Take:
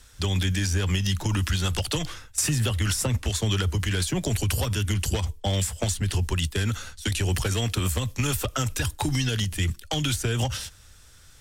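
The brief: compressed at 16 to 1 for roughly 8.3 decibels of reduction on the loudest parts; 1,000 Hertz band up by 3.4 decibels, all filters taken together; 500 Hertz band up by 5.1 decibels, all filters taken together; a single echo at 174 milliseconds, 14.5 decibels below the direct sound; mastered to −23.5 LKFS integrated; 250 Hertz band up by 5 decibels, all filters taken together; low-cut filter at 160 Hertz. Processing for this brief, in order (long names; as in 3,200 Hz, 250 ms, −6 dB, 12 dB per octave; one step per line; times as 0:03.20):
high-pass filter 160 Hz
parametric band 250 Hz +7 dB
parametric band 500 Hz +3.5 dB
parametric band 1,000 Hz +3 dB
downward compressor 16 to 1, threshold −28 dBFS
single-tap delay 174 ms −14.5 dB
level +9 dB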